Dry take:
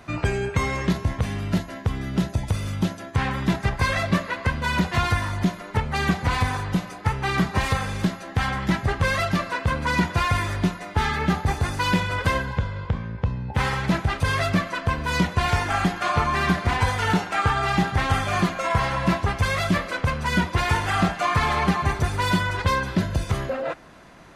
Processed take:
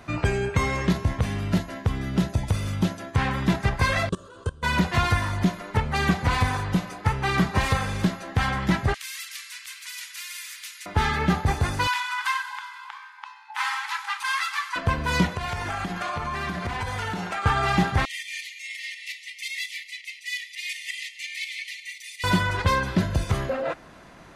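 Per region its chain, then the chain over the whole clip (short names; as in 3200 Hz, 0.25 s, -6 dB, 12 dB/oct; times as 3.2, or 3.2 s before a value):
4.09–4.63 EQ curve 120 Hz 0 dB, 230 Hz -11 dB, 440 Hz +7 dB, 680 Hz -13 dB, 1400 Hz -2 dB, 2100 Hz -29 dB, 3100 Hz -3 dB, 4800 Hz -8 dB, 8900 Hz +10 dB, 13000 Hz -21 dB + level quantiser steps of 23 dB
8.94–10.86 elliptic high-pass 2100 Hz, stop band 70 dB + dynamic EQ 3300 Hz, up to -5 dB, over -44 dBFS, Q 0.87 + spectral compressor 2:1
11.87–14.76 brick-wall FIR high-pass 800 Hz + thin delay 96 ms, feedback 69%, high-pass 4600 Hz, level -11 dB
15.35–17.46 notches 60/120/180/240/300/360/420/480 Hz + compressor 12:1, threshold -25 dBFS
18.05–22.24 tremolo saw up 5.6 Hz, depth 50% + brick-wall FIR high-pass 1800 Hz
whole clip: dry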